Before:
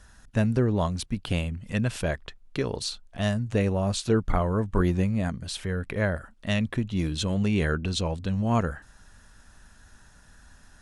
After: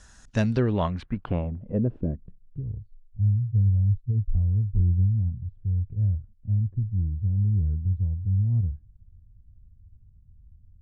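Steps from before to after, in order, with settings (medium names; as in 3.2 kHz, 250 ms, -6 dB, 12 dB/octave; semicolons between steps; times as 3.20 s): 2.87–4.35 s: spectral contrast enhancement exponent 2.2; low-pass sweep 7.3 kHz -> 100 Hz, 0.23–2.63 s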